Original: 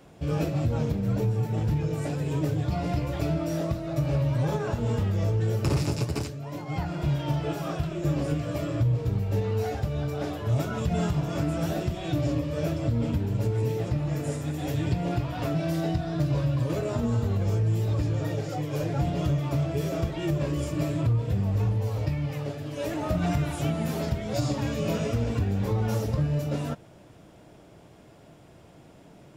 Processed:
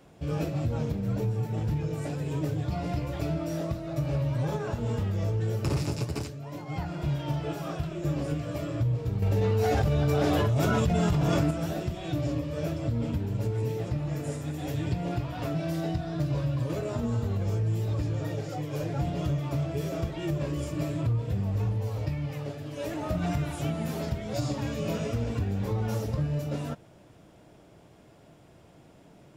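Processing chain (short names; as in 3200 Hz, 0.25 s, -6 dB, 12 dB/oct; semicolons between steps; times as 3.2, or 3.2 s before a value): 9.22–11.51 fast leveller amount 100%; gain -3 dB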